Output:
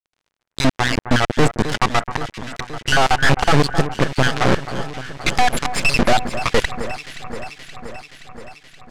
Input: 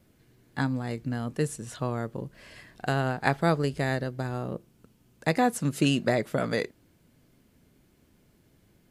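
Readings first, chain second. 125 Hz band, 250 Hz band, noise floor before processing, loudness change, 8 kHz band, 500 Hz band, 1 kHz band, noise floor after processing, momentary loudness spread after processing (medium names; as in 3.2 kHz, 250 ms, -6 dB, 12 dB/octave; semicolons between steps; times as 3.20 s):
+7.5 dB, +6.5 dB, -64 dBFS, +9.5 dB, +12.5 dB, +8.0 dB, +12.5 dB, -79 dBFS, 18 LU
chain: random holes in the spectrogram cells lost 74%; high-pass 180 Hz 6 dB/octave; peaking EQ 9.2 kHz -3 dB 0.81 oct; fuzz box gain 54 dB, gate -45 dBFS; crackle 86 per s -52 dBFS; half-wave rectifier; distance through air 69 m; echo whose repeats swap between lows and highs 262 ms, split 1.9 kHz, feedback 81%, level -11 dB; trim +5.5 dB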